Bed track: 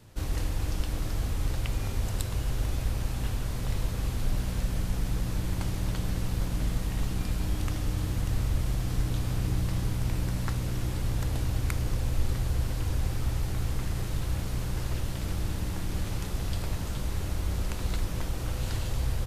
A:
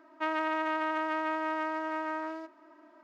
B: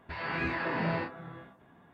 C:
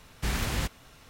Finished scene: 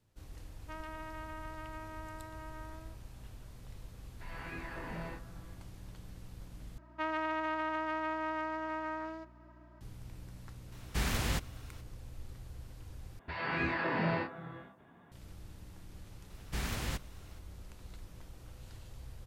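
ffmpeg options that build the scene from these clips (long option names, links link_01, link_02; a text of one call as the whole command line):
ffmpeg -i bed.wav -i cue0.wav -i cue1.wav -i cue2.wav -filter_complex "[1:a]asplit=2[link_01][link_02];[2:a]asplit=2[link_03][link_04];[3:a]asplit=2[link_05][link_06];[0:a]volume=-19.5dB[link_07];[link_02]aeval=exprs='val(0)+0.00224*(sin(2*PI*60*n/s)+sin(2*PI*2*60*n/s)/2+sin(2*PI*3*60*n/s)/3+sin(2*PI*4*60*n/s)/4+sin(2*PI*5*60*n/s)/5)':channel_layout=same[link_08];[link_07]asplit=3[link_09][link_10][link_11];[link_09]atrim=end=6.784[link_12];[link_08]atrim=end=3.03,asetpts=PTS-STARTPTS,volume=-4dB[link_13];[link_10]atrim=start=9.806:end=13.194[link_14];[link_04]atrim=end=1.93,asetpts=PTS-STARTPTS,volume=-1dB[link_15];[link_11]atrim=start=15.116[link_16];[link_01]atrim=end=3.03,asetpts=PTS-STARTPTS,volume=-15dB,afade=type=in:duration=0.004:curve=hsin,afade=type=out:start_time=3.026:duration=0.004:curve=hsin,adelay=480[link_17];[link_03]atrim=end=1.93,asetpts=PTS-STARTPTS,volume=-12dB,afade=type=in:duration=0.004:curve=hsin,afade=type=out:start_time=1.926:duration=0.004:curve=hsin,adelay=4110[link_18];[link_05]atrim=end=1.09,asetpts=PTS-STARTPTS,volume=-3dB,afade=type=in:duration=0.004:curve=hsin,afade=type=out:start_time=1.086:duration=0.004:curve=hsin,adelay=10720[link_19];[link_06]atrim=end=1.09,asetpts=PTS-STARTPTS,volume=-7dB,afade=type=in:duration=0.004:curve=hsin,afade=type=out:start_time=1.086:duration=0.004:curve=hsin,adelay=16300[link_20];[link_12][link_13]acrossfade=duration=0.004:curve1=hsin:curve2=hsin[link_21];[link_21][link_14]acrossfade=duration=0.004:curve1=hsin:curve2=hsin[link_22];[link_22][link_15]acrossfade=duration=0.004:curve1=hsin:curve2=hsin[link_23];[link_23][link_16]acrossfade=duration=0.004:curve1=hsin:curve2=hsin[link_24];[link_24][link_17][link_18][link_19][link_20]amix=inputs=5:normalize=0" out.wav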